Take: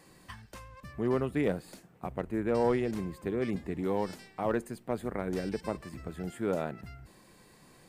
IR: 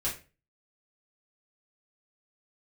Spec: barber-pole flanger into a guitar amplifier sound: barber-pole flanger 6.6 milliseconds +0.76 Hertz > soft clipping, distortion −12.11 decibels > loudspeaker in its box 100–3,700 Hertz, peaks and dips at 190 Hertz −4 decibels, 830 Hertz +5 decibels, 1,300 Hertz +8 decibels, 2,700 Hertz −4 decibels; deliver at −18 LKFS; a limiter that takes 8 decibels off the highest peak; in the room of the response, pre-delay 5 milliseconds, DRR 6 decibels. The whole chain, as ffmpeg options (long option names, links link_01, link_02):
-filter_complex "[0:a]alimiter=limit=-24dB:level=0:latency=1,asplit=2[link_01][link_02];[1:a]atrim=start_sample=2205,adelay=5[link_03];[link_02][link_03]afir=irnorm=-1:irlink=0,volume=-11dB[link_04];[link_01][link_04]amix=inputs=2:normalize=0,asplit=2[link_05][link_06];[link_06]adelay=6.6,afreqshift=0.76[link_07];[link_05][link_07]amix=inputs=2:normalize=1,asoftclip=threshold=-32.5dB,highpass=100,equalizer=frequency=190:width_type=q:width=4:gain=-4,equalizer=frequency=830:width_type=q:width=4:gain=5,equalizer=frequency=1300:width_type=q:width=4:gain=8,equalizer=frequency=2700:width_type=q:width=4:gain=-4,lowpass=frequency=3700:width=0.5412,lowpass=frequency=3700:width=1.3066,volume=24dB"